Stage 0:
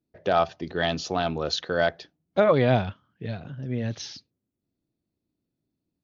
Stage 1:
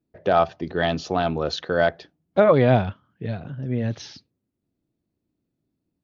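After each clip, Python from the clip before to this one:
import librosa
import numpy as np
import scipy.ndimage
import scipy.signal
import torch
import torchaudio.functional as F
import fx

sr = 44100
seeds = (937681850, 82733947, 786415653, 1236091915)

y = fx.high_shelf(x, sr, hz=3200.0, db=-9.5)
y = F.gain(torch.from_numpy(y), 4.0).numpy()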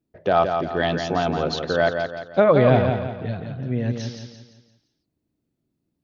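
y = fx.echo_feedback(x, sr, ms=172, feedback_pct=41, wet_db=-6)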